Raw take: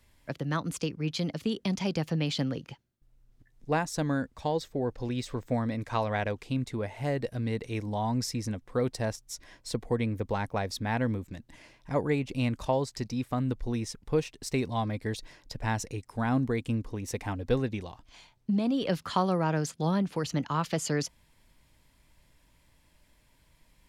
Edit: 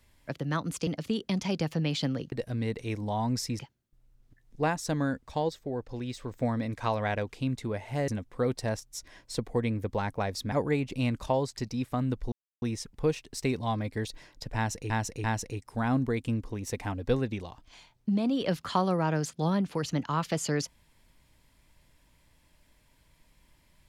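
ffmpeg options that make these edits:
ffmpeg -i in.wav -filter_complex "[0:a]asplit=11[link_01][link_02][link_03][link_04][link_05][link_06][link_07][link_08][link_09][link_10][link_11];[link_01]atrim=end=0.872[link_12];[link_02]atrim=start=1.228:end=2.682[link_13];[link_03]atrim=start=7.168:end=8.442[link_14];[link_04]atrim=start=2.678:end=4.582[link_15];[link_05]atrim=start=4.578:end=5.402,asetpts=PTS-STARTPTS,volume=-3.5dB[link_16];[link_06]atrim=start=5.398:end=7.172[link_17];[link_07]atrim=start=8.438:end=10.882[link_18];[link_08]atrim=start=11.908:end=13.71,asetpts=PTS-STARTPTS,afade=type=out:start_time=1.798:duration=0.004:curve=hsin,apad=pad_dur=0.3[link_19];[link_09]atrim=start=13.71:end=15.992,asetpts=PTS-STARTPTS,afade=type=in:duration=0.004:curve=hsin[link_20];[link_10]atrim=start=15.648:end=15.992[link_21];[link_11]atrim=start=15.648[link_22];[link_12][link_13]acrossfade=duration=0.004:curve1=hsin:curve2=hsin[link_23];[link_23][link_14]acrossfade=duration=0.004:curve1=hsin:curve2=hsin[link_24];[link_24][link_15]acrossfade=duration=0.004:curve1=hsin:curve2=hsin[link_25];[link_25][link_16]acrossfade=duration=0.004:curve1=hsin:curve2=hsin[link_26];[link_26][link_17]acrossfade=duration=0.004:curve1=hsin:curve2=hsin[link_27];[link_27][link_18]acrossfade=duration=0.004:curve1=hsin:curve2=hsin[link_28];[link_19][link_20]concat=n=2:v=0:a=1[link_29];[link_28][link_29]acrossfade=duration=0.004:curve1=hsin:curve2=hsin[link_30];[link_30][link_21]acrossfade=duration=0.004:curve1=hsin:curve2=hsin[link_31];[link_31][link_22]acrossfade=duration=0.004:curve1=hsin:curve2=hsin" out.wav

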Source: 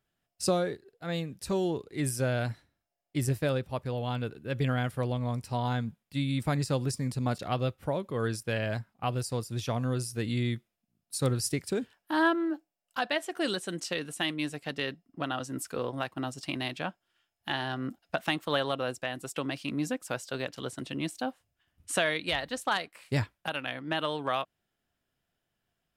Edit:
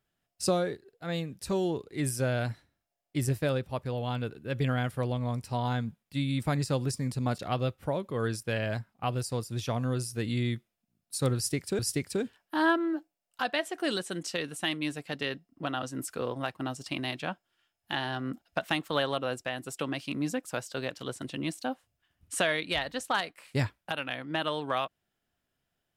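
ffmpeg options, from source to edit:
ffmpeg -i in.wav -filter_complex "[0:a]asplit=2[link_01][link_02];[link_01]atrim=end=11.792[link_03];[link_02]atrim=start=11.358[link_04];[link_03][link_04]acrossfade=duration=0.004:curve1=hsin:curve2=hsin" out.wav

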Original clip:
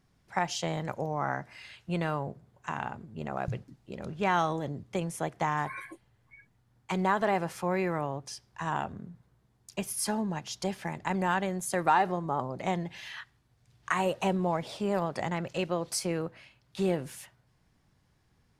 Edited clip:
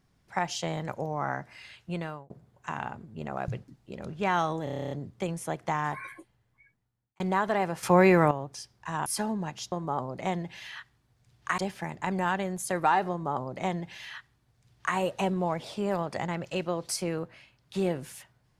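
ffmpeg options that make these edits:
ffmpeg -i in.wav -filter_complex "[0:a]asplit=17[link_01][link_02][link_03][link_04][link_05][link_06][link_07][link_08][link_09][link_10][link_11][link_12][link_13][link_14][link_15][link_16][link_17];[link_01]atrim=end=2.3,asetpts=PTS-STARTPTS,afade=type=out:start_time=1.66:duration=0.64:curve=qsin[link_18];[link_02]atrim=start=2.3:end=4.672,asetpts=PTS-STARTPTS,afade=type=in:duration=0.004:curve=hsin[link_19];[link_03]atrim=start=4.638:end=4.672[link_20];[link_04]atrim=start=4.638:end=4.672[link_21];[link_05]atrim=start=4.638:end=4.672[link_22];[link_06]atrim=start=4.638:end=4.672[link_23];[link_07]atrim=start=4.638:end=4.672[link_24];[link_08]atrim=start=4.638:end=4.672[link_25];[link_09]atrim=start=4.638:end=4.672[link_26];[link_10]atrim=start=4.638:end=4.672[link_27];[link_11]atrim=start=4.638:end=6.93,asetpts=PTS-STARTPTS,afade=type=out:start_time=1.052:duration=1.24[link_28];[link_12]atrim=start=6.93:end=7.562,asetpts=PTS-STARTPTS,afade=type=in:duration=0.004:curve=hsin[link_29];[link_13]atrim=start=7.558:end=8.042,asetpts=PTS-STARTPTS,volume=10dB[link_30];[link_14]atrim=start=8.038:end=8.792[link_31];[link_15]atrim=start=9.948:end=10.612[link_32];[link_16]atrim=start=12.128:end=13.992[link_33];[link_17]atrim=start=10.608[link_34];[link_18][link_19]concat=n=2:v=0:a=1[link_35];[link_35][link_20]acrossfade=duration=0.004:curve1=hsin:curve2=hsin[link_36];[link_36][link_21]acrossfade=duration=0.004:curve1=hsin:curve2=hsin[link_37];[link_37][link_22]acrossfade=duration=0.004:curve1=hsin:curve2=hsin[link_38];[link_38][link_23]acrossfade=duration=0.004:curve1=hsin:curve2=hsin[link_39];[link_39][link_24]acrossfade=duration=0.004:curve1=hsin:curve2=hsin[link_40];[link_40][link_25]acrossfade=duration=0.004:curve1=hsin:curve2=hsin[link_41];[link_41][link_26]acrossfade=duration=0.004:curve1=hsin:curve2=hsin[link_42];[link_42][link_27]acrossfade=duration=0.004:curve1=hsin:curve2=hsin[link_43];[link_28][link_29]concat=n=2:v=0:a=1[link_44];[link_43][link_44]acrossfade=duration=0.004:curve1=hsin:curve2=hsin[link_45];[link_45][link_30]acrossfade=duration=0.004:curve1=hsin:curve2=hsin[link_46];[link_46][link_31]acrossfade=duration=0.004:curve1=hsin:curve2=hsin[link_47];[link_47][link_32]acrossfade=duration=0.004:curve1=hsin:curve2=hsin[link_48];[link_48][link_33]acrossfade=duration=0.004:curve1=hsin:curve2=hsin[link_49];[link_49][link_34]acrossfade=duration=0.004:curve1=hsin:curve2=hsin" out.wav

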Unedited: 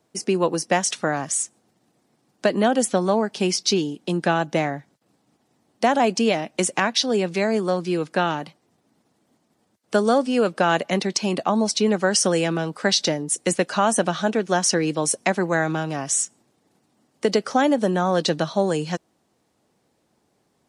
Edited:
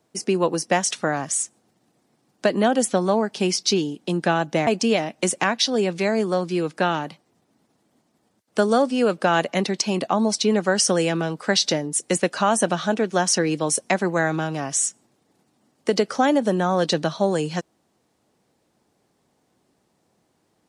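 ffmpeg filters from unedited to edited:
ffmpeg -i in.wav -filter_complex "[0:a]asplit=2[link_01][link_02];[link_01]atrim=end=4.672[link_03];[link_02]atrim=start=6.028[link_04];[link_03][link_04]acrossfade=duration=0.004:curve1=hsin:curve2=hsin" out.wav

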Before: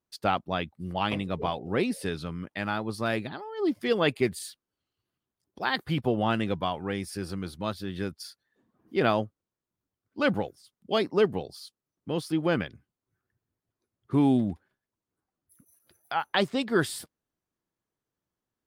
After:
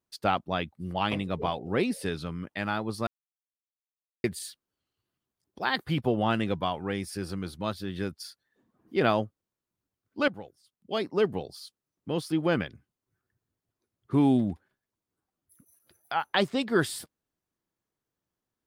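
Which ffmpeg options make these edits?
ffmpeg -i in.wav -filter_complex "[0:a]asplit=4[link_01][link_02][link_03][link_04];[link_01]atrim=end=3.07,asetpts=PTS-STARTPTS,afade=type=out:start_time=3.066:duration=0.004:curve=hsin[link_05];[link_02]atrim=start=3.07:end=4.24,asetpts=PTS-STARTPTS,volume=0[link_06];[link_03]atrim=start=4.24:end=10.28,asetpts=PTS-STARTPTS,afade=type=in:duration=0.004:curve=hsin,afade=type=out:start_time=6.036:duration=0.004:curve=hsin:silence=0.158489[link_07];[link_04]atrim=start=10.28,asetpts=PTS-STARTPTS,afade=type=in:duration=1.27:silence=0.158489[link_08];[link_05][link_06][link_07][link_08]concat=n=4:v=0:a=1" out.wav

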